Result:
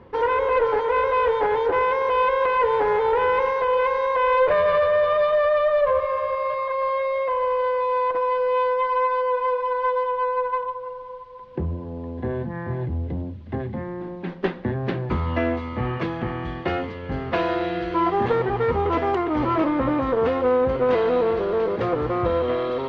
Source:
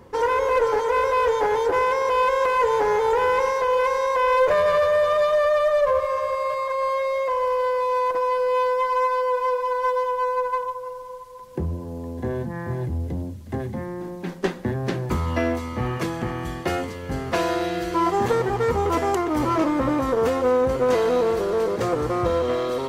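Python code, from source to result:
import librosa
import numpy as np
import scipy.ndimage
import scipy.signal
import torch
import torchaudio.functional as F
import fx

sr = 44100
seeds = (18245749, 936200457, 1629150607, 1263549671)

y = scipy.signal.sosfilt(scipy.signal.butter(4, 3600.0, 'lowpass', fs=sr, output='sos'), x)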